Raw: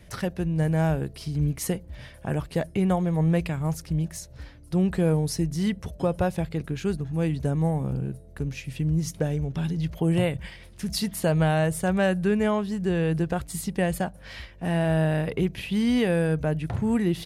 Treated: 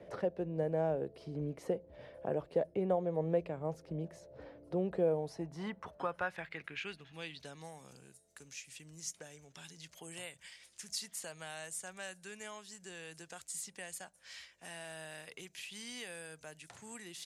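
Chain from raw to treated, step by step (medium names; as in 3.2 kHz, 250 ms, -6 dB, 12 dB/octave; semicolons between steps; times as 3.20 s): band-pass sweep 520 Hz -> 7.2 kHz, 4.97–8.07 s; three bands compressed up and down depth 40%; trim +1.5 dB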